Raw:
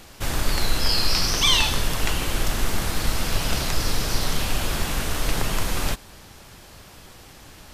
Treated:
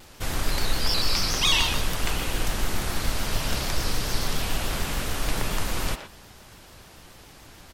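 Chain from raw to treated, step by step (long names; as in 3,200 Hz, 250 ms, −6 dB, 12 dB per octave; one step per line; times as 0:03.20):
far-end echo of a speakerphone 120 ms, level −7 dB
pitch modulation by a square or saw wave square 6.9 Hz, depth 100 cents
level −3 dB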